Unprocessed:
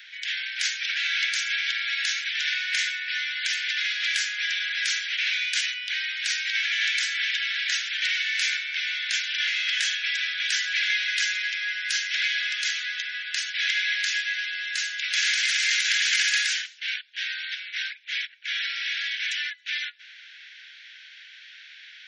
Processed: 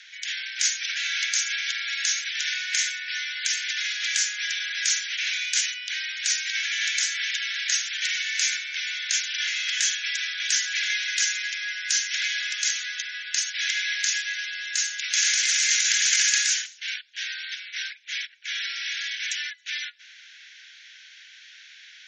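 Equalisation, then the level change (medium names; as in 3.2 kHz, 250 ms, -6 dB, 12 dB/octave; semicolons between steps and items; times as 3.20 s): resonant low-pass 6.7 kHz, resonance Q 4.5; peaking EQ 3 kHz -3.5 dB 2.6 oct; 0.0 dB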